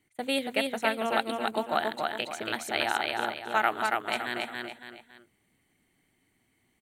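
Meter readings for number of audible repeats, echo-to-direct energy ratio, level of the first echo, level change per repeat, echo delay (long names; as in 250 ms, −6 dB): 3, −2.5 dB, −3.0 dB, −8.5 dB, 280 ms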